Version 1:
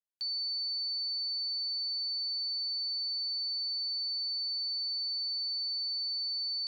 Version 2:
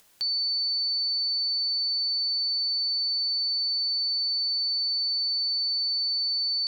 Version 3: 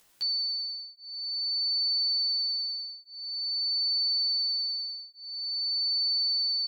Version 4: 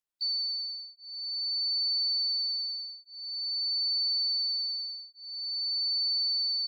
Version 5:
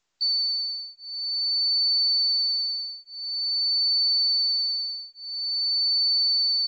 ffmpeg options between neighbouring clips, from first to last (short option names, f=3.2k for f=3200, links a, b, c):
-af "acompressor=mode=upward:threshold=-45dB:ratio=2.5,volume=7.5dB"
-filter_complex "[0:a]asplit=2[a][b];[b]adelay=11.9,afreqshift=0.48[c];[a][c]amix=inputs=2:normalize=1"
-af "afftdn=nr=29:nf=-44,volume=-1.5dB"
-af "volume=6.5dB" -ar 16000 -c:a pcm_mulaw